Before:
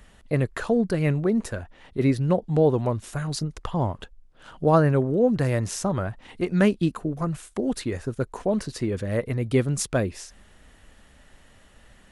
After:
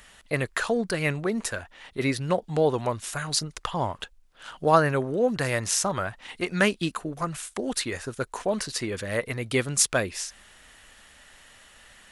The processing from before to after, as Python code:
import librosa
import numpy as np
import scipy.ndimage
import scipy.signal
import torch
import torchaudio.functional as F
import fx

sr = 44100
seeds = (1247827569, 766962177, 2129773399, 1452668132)

y = fx.tilt_shelf(x, sr, db=-8.0, hz=670.0)